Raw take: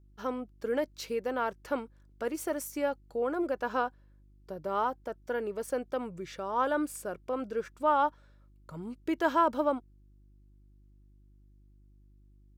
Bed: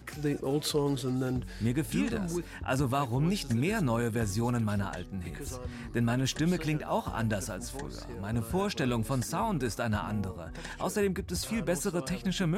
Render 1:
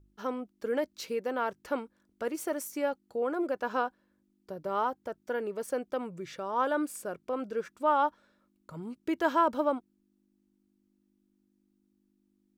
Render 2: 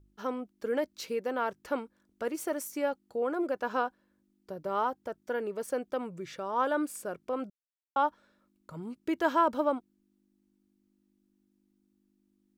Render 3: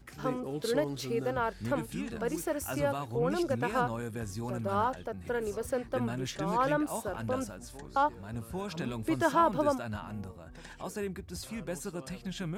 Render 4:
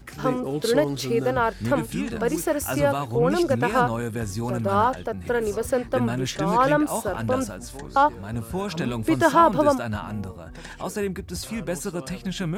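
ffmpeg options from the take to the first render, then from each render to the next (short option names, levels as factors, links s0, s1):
-af "bandreject=f=50:t=h:w=4,bandreject=f=100:t=h:w=4,bandreject=f=150:t=h:w=4"
-filter_complex "[0:a]asplit=3[s0][s1][s2];[s0]atrim=end=7.5,asetpts=PTS-STARTPTS,afade=t=out:st=7.496:d=0.004:c=hsin[s3];[s1]atrim=start=7.5:end=7.96,asetpts=PTS-STARTPTS,volume=0[s4];[s2]atrim=start=7.96,asetpts=PTS-STARTPTS,afade=t=in:d=0.004:c=hsin[s5];[s3][s4][s5]concat=n=3:v=0:a=1"
-filter_complex "[1:a]volume=0.422[s0];[0:a][s0]amix=inputs=2:normalize=0"
-af "volume=2.82"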